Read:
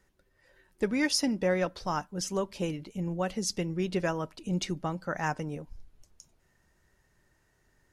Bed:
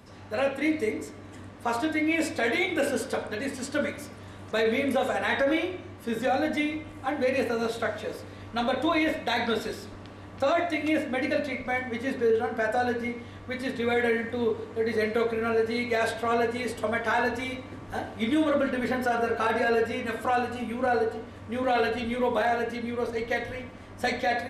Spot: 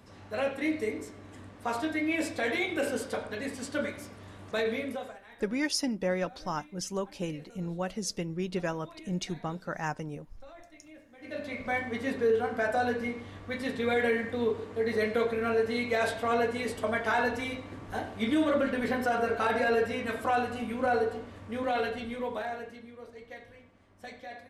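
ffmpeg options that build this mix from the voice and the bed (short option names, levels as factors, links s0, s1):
-filter_complex "[0:a]adelay=4600,volume=0.75[s0];[1:a]volume=10.6,afade=t=out:st=4.58:d=0.63:silence=0.0749894,afade=t=in:st=11.19:d=0.51:silence=0.0595662,afade=t=out:st=21.13:d=1.81:silence=0.16788[s1];[s0][s1]amix=inputs=2:normalize=0"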